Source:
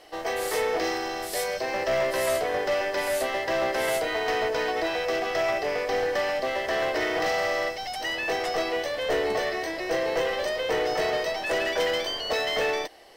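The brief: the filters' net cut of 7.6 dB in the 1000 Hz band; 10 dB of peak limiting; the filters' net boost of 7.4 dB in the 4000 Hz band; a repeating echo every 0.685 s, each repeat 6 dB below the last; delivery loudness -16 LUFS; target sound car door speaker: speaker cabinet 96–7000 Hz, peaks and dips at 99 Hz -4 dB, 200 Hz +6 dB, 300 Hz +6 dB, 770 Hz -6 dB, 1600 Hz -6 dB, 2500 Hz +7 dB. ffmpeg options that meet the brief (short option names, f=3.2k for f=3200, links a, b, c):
-af "equalizer=f=1k:t=o:g=-6,equalizer=f=4k:t=o:g=9,alimiter=limit=-23dB:level=0:latency=1,highpass=96,equalizer=f=99:t=q:w=4:g=-4,equalizer=f=200:t=q:w=4:g=6,equalizer=f=300:t=q:w=4:g=6,equalizer=f=770:t=q:w=4:g=-6,equalizer=f=1.6k:t=q:w=4:g=-6,equalizer=f=2.5k:t=q:w=4:g=7,lowpass=f=7k:w=0.5412,lowpass=f=7k:w=1.3066,aecho=1:1:685|1370|2055|2740|3425|4110:0.501|0.251|0.125|0.0626|0.0313|0.0157,volume=12dB"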